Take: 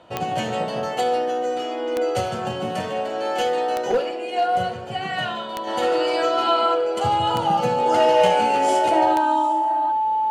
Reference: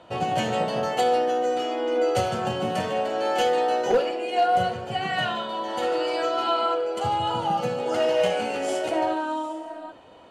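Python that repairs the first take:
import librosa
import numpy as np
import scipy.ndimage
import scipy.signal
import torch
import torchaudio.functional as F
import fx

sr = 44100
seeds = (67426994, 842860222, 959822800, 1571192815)

y = fx.fix_declick_ar(x, sr, threshold=10.0)
y = fx.notch(y, sr, hz=870.0, q=30.0)
y = fx.gain(y, sr, db=fx.steps((0.0, 0.0), (5.67, -4.5)))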